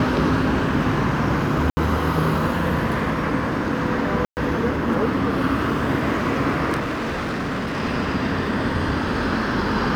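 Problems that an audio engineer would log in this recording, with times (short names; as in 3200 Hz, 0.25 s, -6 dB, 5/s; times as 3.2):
1.7–1.77 gap 70 ms
4.25–4.37 gap 0.119 s
6.79–7.77 clipped -22 dBFS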